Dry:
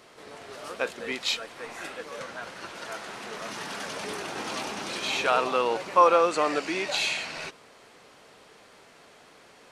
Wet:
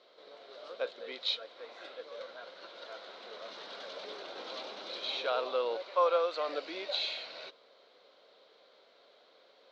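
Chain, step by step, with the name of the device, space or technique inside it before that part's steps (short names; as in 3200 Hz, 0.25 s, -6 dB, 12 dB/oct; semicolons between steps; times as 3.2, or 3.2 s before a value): 5.82–6.49 weighting filter A; phone earpiece (speaker cabinet 470–4200 Hz, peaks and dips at 540 Hz +7 dB, 860 Hz -7 dB, 1200 Hz -4 dB, 1800 Hz -9 dB, 2600 Hz -8 dB, 3900 Hz +8 dB); gain -6.5 dB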